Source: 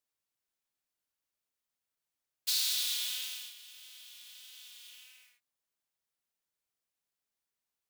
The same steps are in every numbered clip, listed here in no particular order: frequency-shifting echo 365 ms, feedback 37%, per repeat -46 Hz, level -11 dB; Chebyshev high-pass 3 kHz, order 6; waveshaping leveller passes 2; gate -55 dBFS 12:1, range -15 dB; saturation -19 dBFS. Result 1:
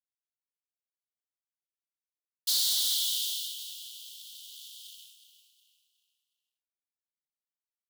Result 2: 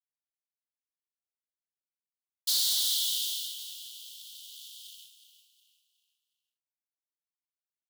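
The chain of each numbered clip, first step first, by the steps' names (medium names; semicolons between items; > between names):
waveshaping leveller > Chebyshev high-pass > gate > frequency-shifting echo > saturation; gate > waveshaping leveller > Chebyshev high-pass > saturation > frequency-shifting echo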